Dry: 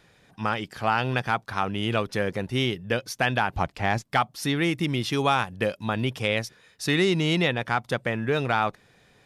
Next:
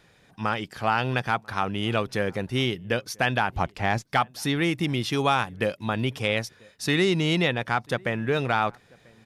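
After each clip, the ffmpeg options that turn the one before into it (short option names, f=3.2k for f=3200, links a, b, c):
-filter_complex "[0:a]asplit=2[a][b];[b]adelay=991.3,volume=-27dB,highshelf=f=4k:g=-22.3[c];[a][c]amix=inputs=2:normalize=0"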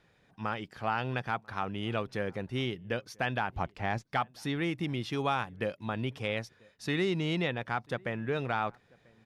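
-af "aemphasis=mode=reproduction:type=cd,volume=-7.5dB"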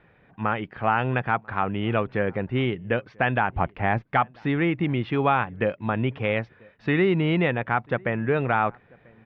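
-af "lowpass=f=2.6k:w=0.5412,lowpass=f=2.6k:w=1.3066,volume=9dB"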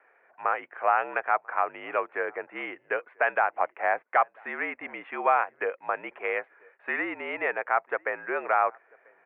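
-af "highpass=f=570:t=q:w=0.5412,highpass=f=570:t=q:w=1.307,lowpass=f=2.4k:t=q:w=0.5176,lowpass=f=2.4k:t=q:w=0.7071,lowpass=f=2.4k:t=q:w=1.932,afreqshift=-53"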